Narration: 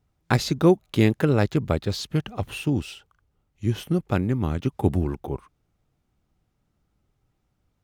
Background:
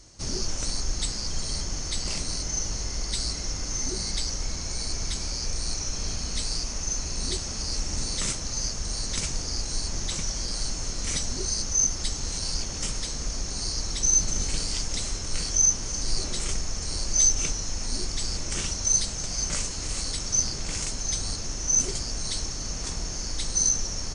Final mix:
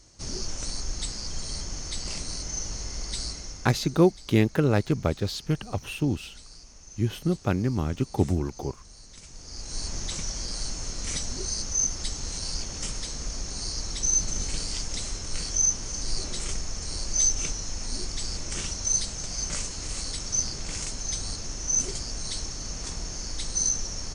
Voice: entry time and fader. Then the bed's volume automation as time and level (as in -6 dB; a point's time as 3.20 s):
3.35 s, -2.0 dB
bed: 3.24 s -3.5 dB
4.07 s -18.5 dB
9.22 s -18.5 dB
9.82 s -2.5 dB